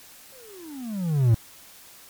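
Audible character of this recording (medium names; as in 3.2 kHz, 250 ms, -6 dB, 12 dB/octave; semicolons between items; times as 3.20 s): a quantiser's noise floor 8-bit, dither triangular; WMA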